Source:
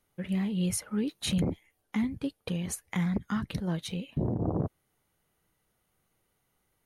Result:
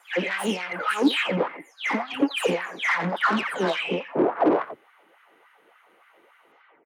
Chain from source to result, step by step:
every frequency bin delayed by itself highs early, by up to 334 ms
high shelf with overshoot 3,600 Hz −9.5 dB, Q 1.5
mid-hump overdrive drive 26 dB, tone 2,200 Hz, clips at −17.5 dBFS
slap from a distant wall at 15 metres, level −12 dB
auto-filter high-pass sine 3.5 Hz 280–1,500 Hz
level +2.5 dB

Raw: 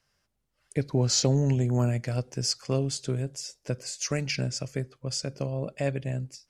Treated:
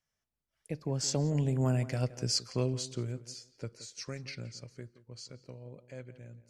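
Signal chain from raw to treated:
source passing by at 0:02.09, 30 m/s, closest 19 metres
tape delay 172 ms, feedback 24%, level −14 dB, low-pass 2,100 Hz
level −2 dB

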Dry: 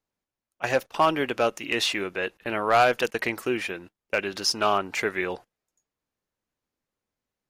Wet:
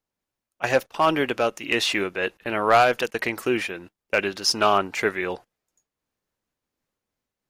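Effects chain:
amplitude modulation by smooth noise, depth 55%
level +5 dB

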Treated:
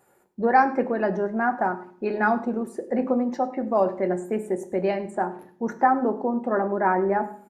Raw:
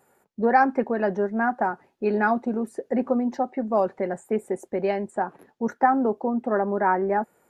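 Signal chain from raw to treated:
single-tap delay 103 ms −19.5 dB
on a send at −7.5 dB: convolution reverb RT60 0.55 s, pre-delay 3 ms

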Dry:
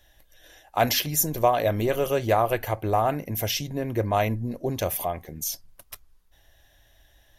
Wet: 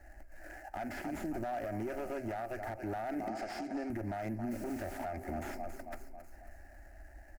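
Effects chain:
running median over 15 samples
repeating echo 272 ms, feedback 54%, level −18 dB
downward compressor 16 to 1, threshold −35 dBFS, peak gain reduction 21 dB
0:03.28–0:03.90: loudspeaker in its box 270–8,000 Hz, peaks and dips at 770 Hz +4 dB, 3,400 Hz +10 dB, 5,000 Hz +10 dB
asymmetric clip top −40.5 dBFS
0:04.50–0:04.97: background noise pink −56 dBFS
phaser with its sweep stopped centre 710 Hz, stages 8
brickwall limiter −38.5 dBFS, peak gain reduction 10.5 dB
slew-rate limiting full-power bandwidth 7.5 Hz
level +9 dB

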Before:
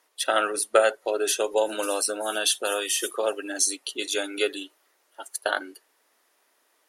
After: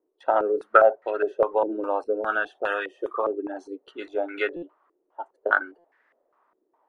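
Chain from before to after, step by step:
buffer that repeats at 0:04.56/0:05.78, samples 256, times 10
low-pass on a step sequencer 4.9 Hz 360–1,800 Hz
level −2.5 dB

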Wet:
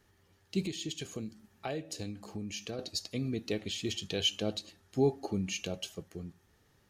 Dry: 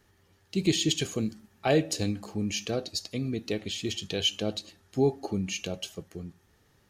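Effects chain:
0:00.63–0:02.79: downward compressor 3 to 1, threshold −35 dBFS, peak gain reduction 12.5 dB
level −3 dB

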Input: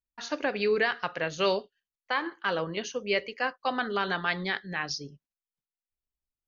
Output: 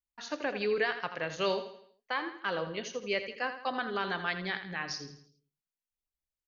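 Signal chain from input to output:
repeating echo 82 ms, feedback 43%, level −10.5 dB
level −4.5 dB

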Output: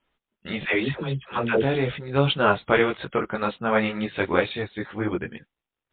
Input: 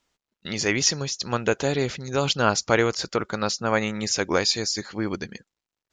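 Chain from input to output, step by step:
0:00.63–0:01.62: all-pass dispersion lows, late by 106 ms, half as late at 560 Hz
multi-voice chorus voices 6, 0.83 Hz, delay 18 ms, depth 4.9 ms
level +4.5 dB
MP3 32 kbit/s 8,000 Hz

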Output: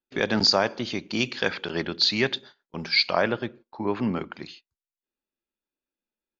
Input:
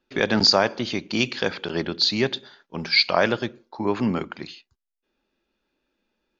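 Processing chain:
noise gate −43 dBFS, range −16 dB
0:01.38–0:02.36: dynamic equaliser 2,000 Hz, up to +6 dB, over −35 dBFS, Q 0.77
0:03.21–0:04.32: low-pass filter 2,800 Hz → 4,700 Hz 12 dB per octave
level −3 dB

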